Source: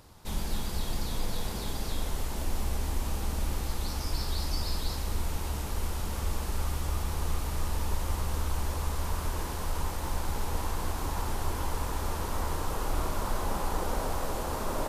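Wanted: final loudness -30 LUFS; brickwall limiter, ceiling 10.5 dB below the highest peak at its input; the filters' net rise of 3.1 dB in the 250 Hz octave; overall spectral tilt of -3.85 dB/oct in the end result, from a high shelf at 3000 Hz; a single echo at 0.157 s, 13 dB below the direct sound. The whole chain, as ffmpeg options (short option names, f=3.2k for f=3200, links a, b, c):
-af "equalizer=f=250:t=o:g=4,highshelf=f=3k:g=4.5,alimiter=level_in=2.5dB:limit=-24dB:level=0:latency=1,volume=-2.5dB,aecho=1:1:157:0.224,volume=7.5dB"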